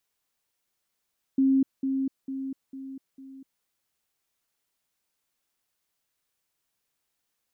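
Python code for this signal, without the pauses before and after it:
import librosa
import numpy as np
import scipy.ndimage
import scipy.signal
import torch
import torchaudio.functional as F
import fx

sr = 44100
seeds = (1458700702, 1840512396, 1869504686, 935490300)

y = fx.level_ladder(sr, hz=268.0, from_db=-18.0, step_db=-6.0, steps=5, dwell_s=0.25, gap_s=0.2)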